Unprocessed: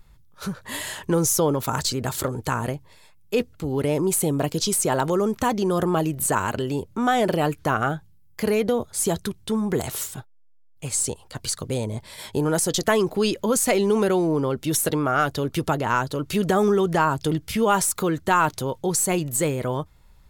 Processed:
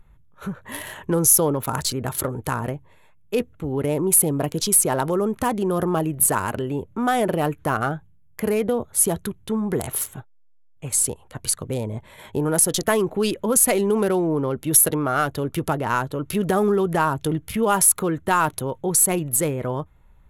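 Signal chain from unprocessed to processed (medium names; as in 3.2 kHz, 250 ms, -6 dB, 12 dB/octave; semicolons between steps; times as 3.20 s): local Wiener filter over 9 samples; peaking EQ 11 kHz +15 dB 0.34 oct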